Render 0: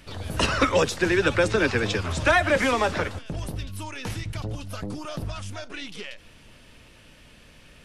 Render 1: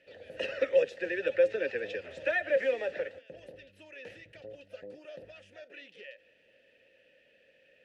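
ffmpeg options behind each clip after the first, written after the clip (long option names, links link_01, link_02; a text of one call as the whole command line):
ffmpeg -i in.wav -filter_complex "[0:a]asplit=3[link_01][link_02][link_03];[link_01]bandpass=frequency=530:width_type=q:width=8,volume=0dB[link_04];[link_02]bandpass=frequency=1840:width_type=q:width=8,volume=-6dB[link_05];[link_03]bandpass=frequency=2480:width_type=q:width=8,volume=-9dB[link_06];[link_04][link_05][link_06]amix=inputs=3:normalize=0" out.wav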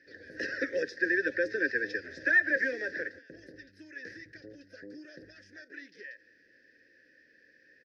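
ffmpeg -i in.wav -af "firequalizer=gain_entry='entry(210,0);entry(300,10);entry(550,-10);entry(1100,-19);entry(1600,13);entry(2800,-16);entry(5100,14);entry(7400,-8)':delay=0.05:min_phase=1" out.wav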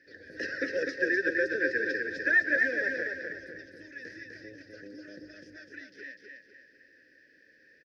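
ffmpeg -i in.wav -af "aecho=1:1:251|502|753|1004|1255:0.631|0.252|0.101|0.0404|0.0162" out.wav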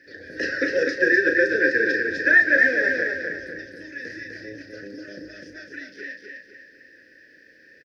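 ffmpeg -i in.wav -filter_complex "[0:a]asplit=2[link_01][link_02];[link_02]adelay=35,volume=-7dB[link_03];[link_01][link_03]amix=inputs=2:normalize=0,volume=8dB" out.wav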